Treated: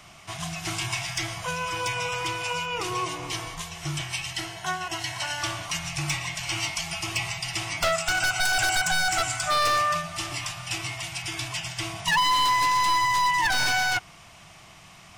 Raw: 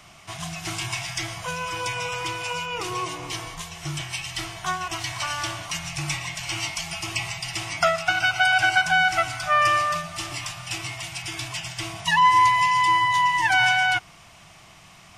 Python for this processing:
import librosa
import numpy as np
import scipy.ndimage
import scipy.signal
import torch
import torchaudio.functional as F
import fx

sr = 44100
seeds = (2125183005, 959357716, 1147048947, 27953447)

y = fx.notch_comb(x, sr, f0_hz=1200.0, at=(4.33, 5.43))
y = fx.peak_eq(y, sr, hz=7600.0, db=14.5, octaves=0.39, at=(7.92, 9.59))
y = 10.0 ** (-17.0 / 20.0) * (np.abs((y / 10.0 ** (-17.0 / 20.0) + 3.0) % 4.0 - 2.0) - 1.0)